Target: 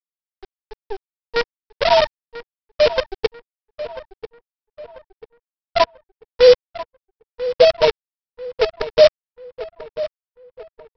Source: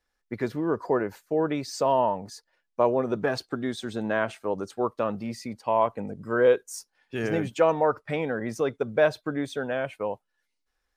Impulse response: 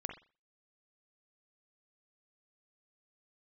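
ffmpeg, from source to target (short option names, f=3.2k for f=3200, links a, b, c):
-filter_complex "[0:a]highpass=f=230:p=1,afftfilt=real='re*gte(hypot(re,im),0.631)':imag='im*gte(hypot(re,im),0.631)':win_size=1024:overlap=0.75,equalizer=f=700:t=o:w=0.26:g=4,dynaudnorm=f=150:g=17:m=10dB,aresample=11025,acrusher=bits=4:dc=4:mix=0:aa=0.000001,aresample=44100,asplit=2[a][b];[b]adelay=991,lowpass=f=2.8k:p=1,volume=-14dB,asplit=2[c][d];[d]adelay=991,lowpass=f=2.8k:p=1,volume=0.41,asplit=2[e][f];[f]adelay=991,lowpass=f=2.8k:p=1,volume=0.41,asplit=2[g][h];[h]adelay=991,lowpass=f=2.8k:p=1,volume=0.41[i];[a][c][e][g][i]amix=inputs=5:normalize=0,adynamicequalizer=threshold=0.0282:dfrequency=1800:dqfactor=0.7:tfrequency=1800:tqfactor=0.7:attack=5:release=100:ratio=0.375:range=1.5:mode=boostabove:tftype=highshelf,volume=2dB"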